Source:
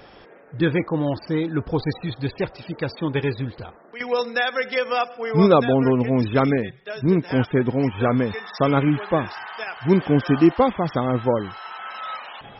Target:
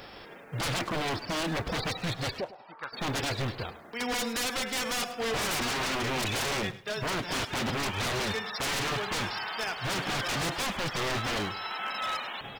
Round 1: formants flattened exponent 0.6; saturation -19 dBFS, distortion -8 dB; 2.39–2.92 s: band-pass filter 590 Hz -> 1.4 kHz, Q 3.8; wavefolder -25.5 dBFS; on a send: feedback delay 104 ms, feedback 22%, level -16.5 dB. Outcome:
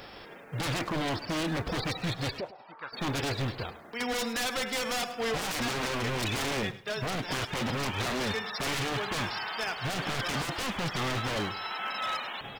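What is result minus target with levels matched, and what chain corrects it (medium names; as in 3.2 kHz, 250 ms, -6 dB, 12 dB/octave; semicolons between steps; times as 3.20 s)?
saturation: distortion +8 dB
formants flattened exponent 0.6; saturation -10.5 dBFS, distortion -16 dB; 2.39–2.92 s: band-pass filter 590 Hz -> 1.4 kHz, Q 3.8; wavefolder -25.5 dBFS; on a send: feedback delay 104 ms, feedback 22%, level -16.5 dB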